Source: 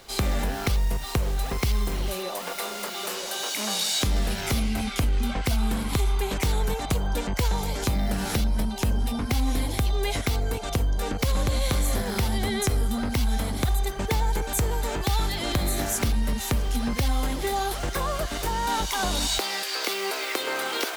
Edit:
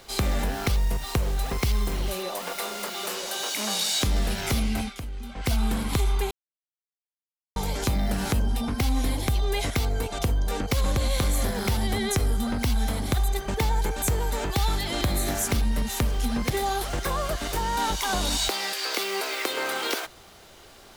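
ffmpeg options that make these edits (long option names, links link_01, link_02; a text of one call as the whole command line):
ffmpeg -i in.wav -filter_complex "[0:a]asplit=7[link_01][link_02][link_03][link_04][link_05][link_06][link_07];[link_01]atrim=end=4.94,asetpts=PTS-STARTPTS,afade=type=out:start_time=4.8:duration=0.14:silence=0.266073[link_08];[link_02]atrim=start=4.94:end=5.35,asetpts=PTS-STARTPTS,volume=-11.5dB[link_09];[link_03]atrim=start=5.35:end=6.31,asetpts=PTS-STARTPTS,afade=type=in:duration=0.14:silence=0.266073,afade=type=out:start_time=0.956:duration=0.004:curve=hsin[link_10];[link_04]atrim=start=6.31:end=7.56,asetpts=PTS-STARTPTS,volume=0[link_11];[link_05]atrim=start=7.56:end=8.322,asetpts=PTS-STARTPTS,afade=type=in:duration=0.004:curve=hsin[link_12];[link_06]atrim=start=8.828:end=17.012[link_13];[link_07]atrim=start=17.398[link_14];[link_08][link_09][link_10][link_11][link_12]concat=n=5:v=0:a=1[link_15];[link_15][link_13]acrossfade=duration=0.004:curve1=hsin:curve2=hsin[link_16];[link_16][link_14]acrossfade=duration=0.004:curve1=hsin:curve2=hsin" out.wav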